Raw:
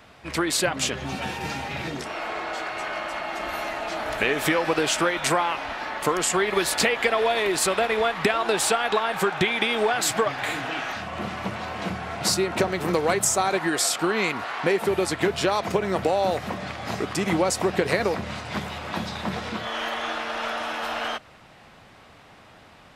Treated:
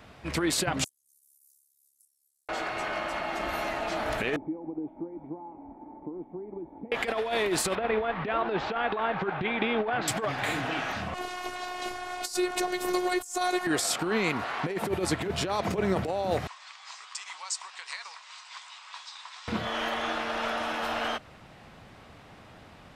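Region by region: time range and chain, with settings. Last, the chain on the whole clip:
0.84–2.49 s: inverse Chebyshev high-pass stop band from 2.7 kHz, stop band 70 dB + ring modulator 35 Hz
4.36–6.92 s: compression 3:1, threshold -24 dBFS + cascade formant filter u
7.75–10.08 s: Gaussian low-pass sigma 2.7 samples + loudspeaker Doppler distortion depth 0.16 ms
11.14–13.67 s: tone controls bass -13 dB, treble +9 dB + robot voice 361 Hz
16.47–19.48 s: Chebyshev band-pass 1–8.3 kHz, order 4 + peaking EQ 1.6 kHz -11.5 dB 1.7 oct
whole clip: compressor with a negative ratio -24 dBFS, ratio -0.5; bass shelf 400 Hz +6 dB; trim -4.5 dB

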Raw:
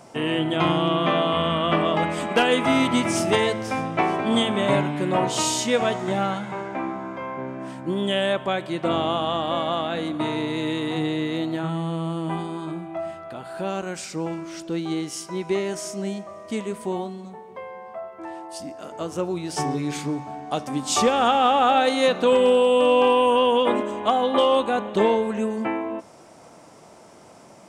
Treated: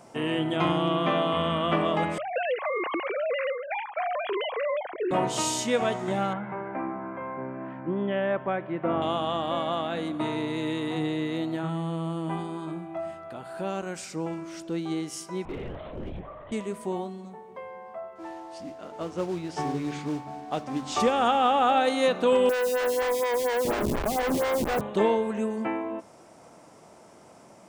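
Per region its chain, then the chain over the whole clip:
2.18–5.11 s: formants replaced by sine waves + compression 5:1, threshold -21 dBFS
6.33–9.02 s: low-pass 2.2 kHz 24 dB/octave + tape noise reduction on one side only encoder only
15.45–16.52 s: LPC vocoder at 8 kHz whisper + compression, threshold -26 dBFS + hard clipper -26.5 dBFS
18.15–21.00 s: modulation noise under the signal 13 dB + distance through air 110 m
22.49–24.81 s: peaking EQ 4 kHz -12 dB 1.7 oct + Schmitt trigger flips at -27.5 dBFS + lamp-driven phase shifter 4.2 Hz
whole clip: peaking EQ 4 kHz -2.5 dB 1.4 oct; de-hum 47.92 Hz, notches 3; trim -3.5 dB

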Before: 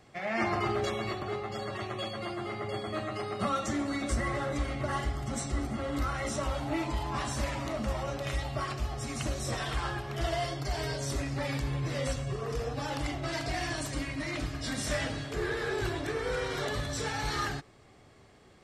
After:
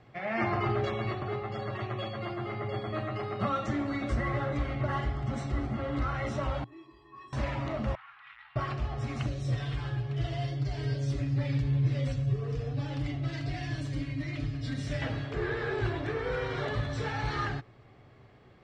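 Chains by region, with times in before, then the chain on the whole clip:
6.64–7.33 s: band-stop 6.1 kHz, Q 6.3 + feedback comb 370 Hz, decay 0.18 s, harmonics odd, mix 100%
7.95–8.56 s: overload inside the chain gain 34.5 dB + inverse Chebyshev high-pass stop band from 600 Hz + distance through air 490 m
9.26–15.02 s: peaking EQ 1 kHz -12 dB 2.2 oct + comb 7 ms, depth 53%
whole clip: low-pass 3.1 kHz 12 dB/octave; peaking EQ 120 Hz +9.5 dB 0.33 oct

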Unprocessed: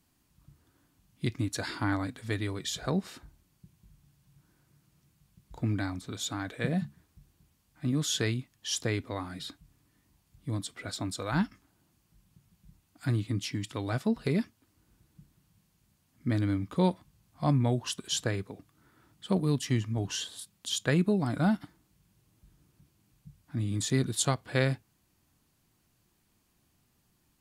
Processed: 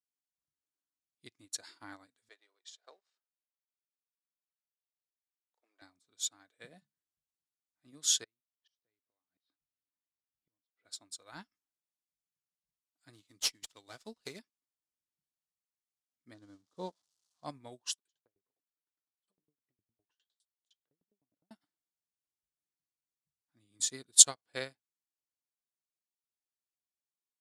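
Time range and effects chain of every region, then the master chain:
2.29–5.82 s: companding laws mixed up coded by A + high-pass 440 Hz 24 dB/octave + distance through air 82 m
8.24–10.85 s: Savitzky-Golay filter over 15 samples + inverted gate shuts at -31 dBFS, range -24 dB + treble shelf 3.3 kHz -7.5 dB
13.13–14.39 s: treble shelf 2.9 kHz +9 dB + sliding maximum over 3 samples
16.34–17.45 s: zero-crossing glitches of -29 dBFS + low-pass 3.6 kHz + peaking EQ 2.3 kHz -12.5 dB 0.91 oct
17.95–21.51 s: low-pass that closes with the level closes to 380 Hz, closed at -24.5 dBFS + compression 2:1, threshold -38 dBFS + sawtooth tremolo in dB decaying 9.8 Hz, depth 35 dB
whole clip: low-pass 9.4 kHz 12 dB/octave; tone controls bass -15 dB, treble +11 dB; upward expansion 2.5:1, over -43 dBFS; trim +5.5 dB

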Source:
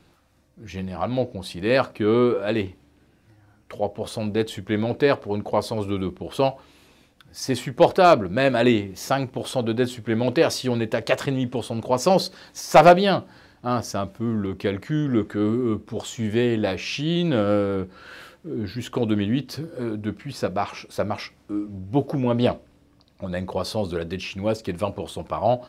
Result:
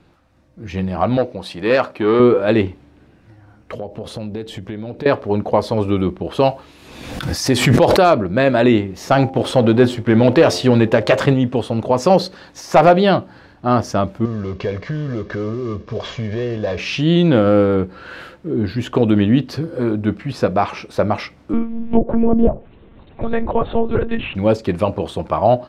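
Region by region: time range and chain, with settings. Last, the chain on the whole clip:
1.17–2.20 s: bass shelf 220 Hz -11.5 dB + transformer saturation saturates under 1.1 kHz
3.75–5.06 s: peaking EQ 1.2 kHz -5 dB 1.7 oct + compression, threshold -33 dBFS
6.40–8.10 s: treble shelf 4.6 kHz +9 dB + swell ahead of each attack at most 44 dB/s
9.11–11.34 s: waveshaping leveller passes 1 + de-hum 88.72 Hz, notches 10
14.25–16.79 s: CVSD coder 32 kbps + compression 3:1, threshold -30 dBFS + comb 1.8 ms, depth 57%
21.53–24.35 s: low-pass that closes with the level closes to 630 Hz, closed at -17.5 dBFS + monotone LPC vocoder at 8 kHz 230 Hz + three bands compressed up and down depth 40%
whole clip: low-pass 2.4 kHz 6 dB/octave; level rider gain up to 5 dB; loudness maximiser +6.5 dB; trim -2 dB

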